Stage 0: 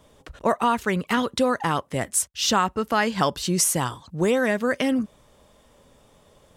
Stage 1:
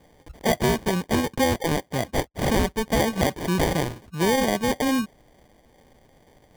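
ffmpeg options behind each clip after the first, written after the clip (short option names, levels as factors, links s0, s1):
-af "acrusher=samples=33:mix=1:aa=0.000001"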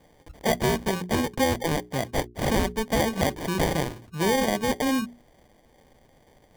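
-af "bandreject=f=60:t=h:w=6,bandreject=f=120:t=h:w=6,bandreject=f=180:t=h:w=6,bandreject=f=240:t=h:w=6,bandreject=f=300:t=h:w=6,bandreject=f=360:t=h:w=6,bandreject=f=420:t=h:w=6,volume=0.841"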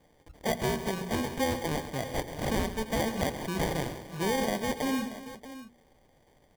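-af "aecho=1:1:86|136|341|631:0.133|0.224|0.168|0.2,volume=0.501"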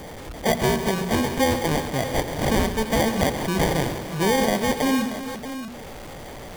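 -af "aeval=exprs='val(0)+0.5*0.01*sgn(val(0))':c=same,volume=2.37"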